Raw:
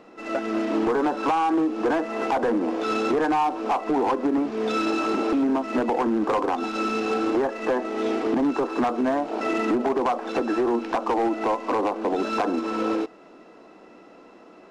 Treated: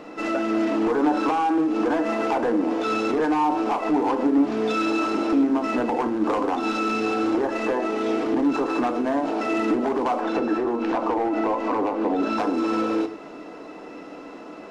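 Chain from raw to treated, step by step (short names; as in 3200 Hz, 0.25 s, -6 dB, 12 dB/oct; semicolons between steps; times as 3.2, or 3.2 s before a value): 10.21–12.38 high shelf 4000 Hz -10 dB; limiter -26.5 dBFS, peak gain reduction 10 dB; FDN reverb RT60 0.57 s, low-frequency decay 1.2×, high-frequency decay 0.85×, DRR 7 dB; gain +8 dB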